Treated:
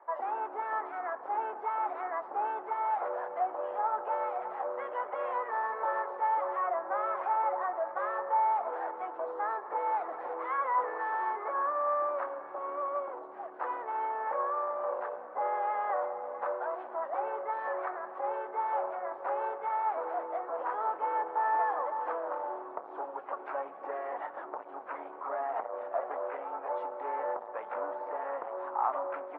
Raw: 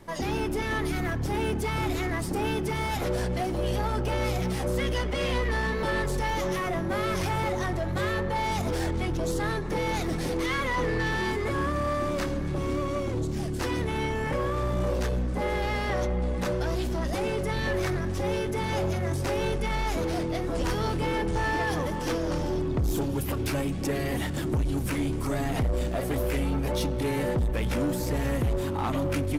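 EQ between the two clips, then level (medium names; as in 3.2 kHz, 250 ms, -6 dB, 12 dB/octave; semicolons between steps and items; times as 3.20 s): high-pass 690 Hz 24 dB/octave; low-pass 1.2 kHz 24 dB/octave; +4.5 dB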